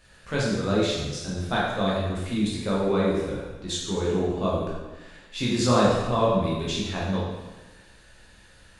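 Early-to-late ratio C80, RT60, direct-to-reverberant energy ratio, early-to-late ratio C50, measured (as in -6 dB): 2.5 dB, 1.2 s, -6.0 dB, -0.5 dB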